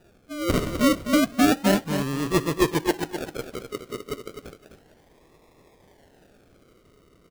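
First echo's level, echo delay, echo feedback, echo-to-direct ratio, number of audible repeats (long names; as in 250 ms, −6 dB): −8.5 dB, 255 ms, 18%, −8.5 dB, 2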